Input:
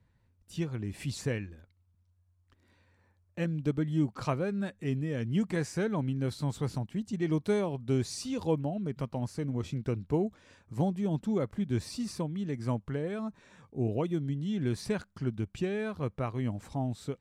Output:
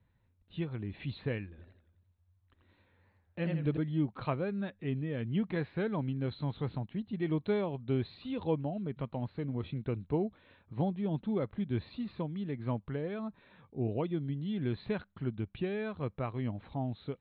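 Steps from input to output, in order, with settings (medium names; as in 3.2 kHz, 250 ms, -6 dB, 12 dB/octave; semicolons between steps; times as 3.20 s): Chebyshev low-pass 4.1 kHz, order 8; 1.49–3.77 s: modulated delay 85 ms, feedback 47%, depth 160 cents, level -4 dB; trim -2 dB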